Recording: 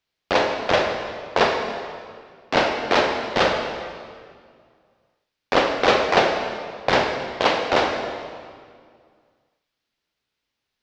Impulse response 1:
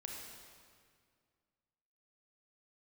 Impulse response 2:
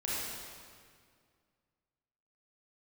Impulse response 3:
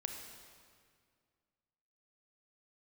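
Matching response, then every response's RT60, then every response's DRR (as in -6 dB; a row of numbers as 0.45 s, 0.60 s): 3; 2.0 s, 2.0 s, 2.0 s; -1.0 dB, -8.0 dB, 3.5 dB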